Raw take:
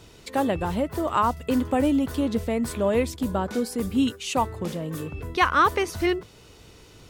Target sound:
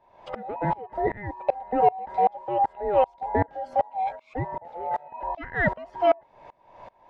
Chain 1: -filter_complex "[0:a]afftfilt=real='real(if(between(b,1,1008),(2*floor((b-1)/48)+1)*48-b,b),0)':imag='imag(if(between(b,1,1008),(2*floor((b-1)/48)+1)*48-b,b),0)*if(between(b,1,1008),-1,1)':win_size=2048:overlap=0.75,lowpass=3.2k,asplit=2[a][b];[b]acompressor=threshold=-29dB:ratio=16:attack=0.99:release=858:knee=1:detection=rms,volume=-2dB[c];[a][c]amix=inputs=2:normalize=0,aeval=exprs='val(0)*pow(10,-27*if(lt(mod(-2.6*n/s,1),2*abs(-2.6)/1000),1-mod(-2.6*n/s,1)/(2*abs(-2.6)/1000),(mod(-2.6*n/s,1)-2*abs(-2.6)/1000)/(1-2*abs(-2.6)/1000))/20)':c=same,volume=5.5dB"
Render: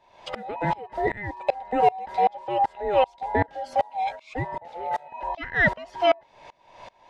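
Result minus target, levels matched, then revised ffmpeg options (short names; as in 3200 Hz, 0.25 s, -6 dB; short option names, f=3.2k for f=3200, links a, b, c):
4000 Hz band +10.5 dB
-filter_complex "[0:a]afftfilt=real='real(if(between(b,1,1008),(2*floor((b-1)/48)+1)*48-b,b),0)':imag='imag(if(between(b,1,1008),(2*floor((b-1)/48)+1)*48-b,b),0)*if(between(b,1,1008),-1,1)':win_size=2048:overlap=0.75,lowpass=1.4k,asplit=2[a][b];[b]acompressor=threshold=-29dB:ratio=16:attack=0.99:release=858:knee=1:detection=rms,volume=-2dB[c];[a][c]amix=inputs=2:normalize=0,aeval=exprs='val(0)*pow(10,-27*if(lt(mod(-2.6*n/s,1),2*abs(-2.6)/1000),1-mod(-2.6*n/s,1)/(2*abs(-2.6)/1000),(mod(-2.6*n/s,1)-2*abs(-2.6)/1000)/(1-2*abs(-2.6)/1000))/20)':c=same,volume=5.5dB"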